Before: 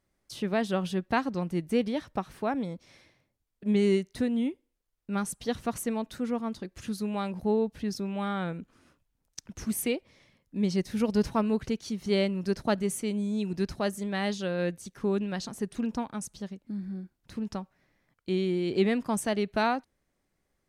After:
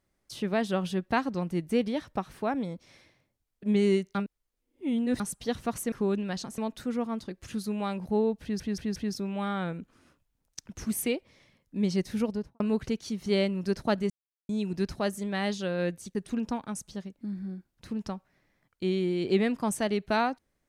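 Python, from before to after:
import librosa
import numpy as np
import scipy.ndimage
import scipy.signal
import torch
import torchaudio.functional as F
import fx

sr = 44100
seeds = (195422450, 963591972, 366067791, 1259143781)

y = fx.studio_fade_out(x, sr, start_s=10.91, length_s=0.49)
y = fx.edit(y, sr, fx.reverse_span(start_s=4.15, length_s=1.05),
    fx.stutter(start_s=7.76, slice_s=0.18, count=4),
    fx.silence(start_s=12.9, length_s=0.39),
    fx.move(start_s=14.95, length_s=0.66, to_s=5.92), tone=tone)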